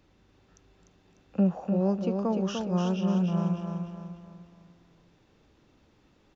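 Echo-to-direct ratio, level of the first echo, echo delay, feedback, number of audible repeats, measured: -4.0 dB, -5.0 dB, 0.298 s, 43%, 5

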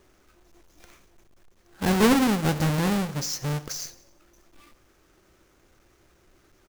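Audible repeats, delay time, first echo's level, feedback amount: 3, 89 ms, -19.0 dB, 48%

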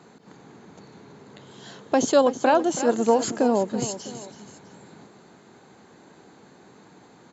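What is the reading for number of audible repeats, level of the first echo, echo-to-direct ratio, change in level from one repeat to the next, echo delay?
2, -12.5 dB, -12.0 dB, -7.5 dB, 0.327 s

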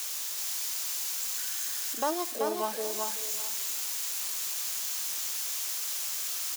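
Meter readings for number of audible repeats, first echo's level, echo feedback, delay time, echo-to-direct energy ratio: 4, -4.0 dB, no steady repeat, 0.383 s, -3.5 dB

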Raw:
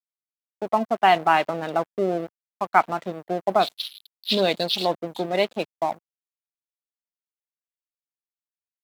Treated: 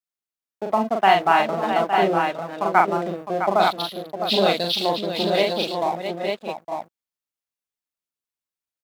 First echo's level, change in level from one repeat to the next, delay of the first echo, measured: -3.5 dB, no steady repeat, 41 ms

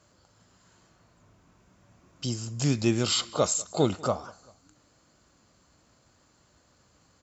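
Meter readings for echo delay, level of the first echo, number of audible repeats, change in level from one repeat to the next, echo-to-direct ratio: 0.195 s, -24.0 dB, 2, -5.5 dB, -23.0 dB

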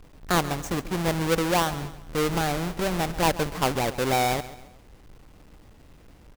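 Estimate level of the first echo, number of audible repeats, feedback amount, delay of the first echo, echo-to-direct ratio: -15.5 dB, 3, 39%, 0.137 s, -15.0 dB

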